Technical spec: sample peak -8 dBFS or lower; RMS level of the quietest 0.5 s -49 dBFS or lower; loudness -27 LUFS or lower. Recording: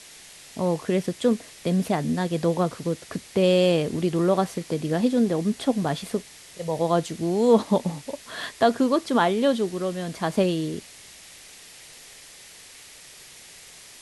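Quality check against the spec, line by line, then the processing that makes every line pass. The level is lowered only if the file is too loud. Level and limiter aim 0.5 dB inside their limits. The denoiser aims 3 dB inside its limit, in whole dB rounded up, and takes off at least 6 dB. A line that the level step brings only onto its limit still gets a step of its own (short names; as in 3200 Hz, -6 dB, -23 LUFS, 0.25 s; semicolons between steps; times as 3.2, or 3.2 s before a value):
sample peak -6.5 dBFS: fail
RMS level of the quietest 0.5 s -47 dBFS: fail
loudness -24.0 LUFS: fail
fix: gain -3.5 dB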